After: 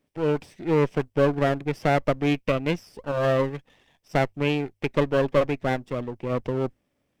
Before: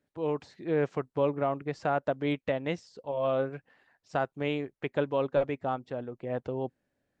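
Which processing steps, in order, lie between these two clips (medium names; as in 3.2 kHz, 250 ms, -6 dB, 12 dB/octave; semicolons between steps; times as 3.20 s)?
comb filter that takes the minimum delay 0.37 ms; hum notches 50/100 Hz; trim +6.5 dB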